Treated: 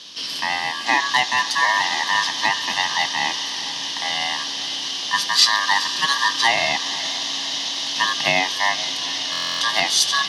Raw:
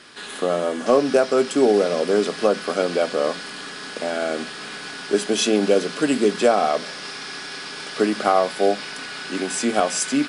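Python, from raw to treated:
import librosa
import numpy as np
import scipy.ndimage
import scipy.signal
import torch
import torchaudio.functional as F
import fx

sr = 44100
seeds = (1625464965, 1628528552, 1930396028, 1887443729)

p1 = x * np.sin(2.0 * np.pi * 1400.0 * np.arange(len(x)) / sr)
p2 = scipy.signal.sosfilt(scipy.signal.butter(4, 150.0, 'highpass', fs=sr, output='sos'), p1)
p3 = fx.band_shelf(p2, sr, hz=4200.0, db=14.5, octaves=1.2)
p4 = p3 + fx.echo_diffused(p3, sr, ms=471, feedback_pct=66, wet_db=-14.5, dry=0)
y = fx.buffer_glitch(p4, sr, at_s=(9.31,), block=1024, repeats=12)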